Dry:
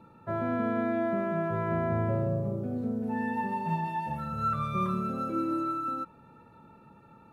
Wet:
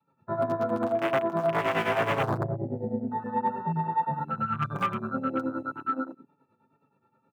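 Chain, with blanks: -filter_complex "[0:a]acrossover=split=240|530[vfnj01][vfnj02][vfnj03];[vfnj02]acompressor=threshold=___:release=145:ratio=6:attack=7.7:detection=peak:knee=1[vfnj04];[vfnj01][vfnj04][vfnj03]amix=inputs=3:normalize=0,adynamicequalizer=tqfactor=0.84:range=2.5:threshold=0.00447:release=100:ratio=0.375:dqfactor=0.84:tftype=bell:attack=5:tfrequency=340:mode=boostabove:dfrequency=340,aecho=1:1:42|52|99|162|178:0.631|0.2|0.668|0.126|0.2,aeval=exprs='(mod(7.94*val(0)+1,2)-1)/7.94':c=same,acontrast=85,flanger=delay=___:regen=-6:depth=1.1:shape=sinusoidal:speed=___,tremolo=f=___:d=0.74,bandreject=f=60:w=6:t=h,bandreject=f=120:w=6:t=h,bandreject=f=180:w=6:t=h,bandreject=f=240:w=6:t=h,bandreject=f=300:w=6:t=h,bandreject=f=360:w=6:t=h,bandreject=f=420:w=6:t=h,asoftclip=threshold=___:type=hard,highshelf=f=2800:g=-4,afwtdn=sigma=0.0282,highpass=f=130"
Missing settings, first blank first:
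-45dB, 7, 1.9, 9.5, -19dB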